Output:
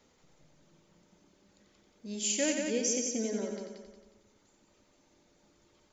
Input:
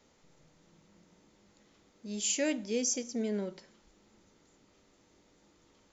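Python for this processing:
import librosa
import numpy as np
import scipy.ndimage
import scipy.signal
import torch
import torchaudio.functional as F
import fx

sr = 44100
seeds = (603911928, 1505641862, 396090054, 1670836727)

y = fx.dereverb_blind(x, sr, rt60_s=1.4)
y = fx.echo_heads(y, sr, ms=90, heads='first and second', feedback_pct=49, wet_db=-6.5)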